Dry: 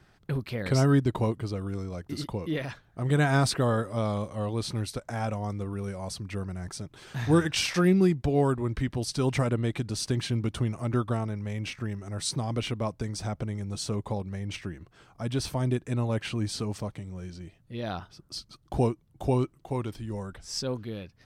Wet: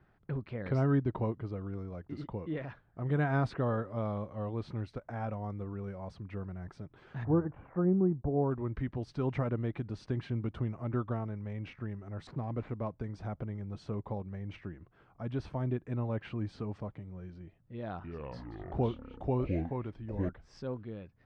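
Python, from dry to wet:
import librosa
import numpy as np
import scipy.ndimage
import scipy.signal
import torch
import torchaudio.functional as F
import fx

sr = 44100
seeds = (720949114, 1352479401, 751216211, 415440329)

y = fx.lowpass(x, sr, hz=1100.0, slope=24, at=(7.23, 8.5), fade=0.02)
y = fx.median_filter(y, sr, points=15, at=(12.27, 12.92))
y = fx.echo_pitch(y, sr, ms=279, semitones=-6, count=3, db_per_echo=-3.0, at=(17.76, 20.29))
y = scipy.signal.sosfilt(scipy.signal.butter(2, 1800.0, 'lowpass', fs=sr, output='sos'), y)
y = y * librosa.db_to_amplitude(-6.0)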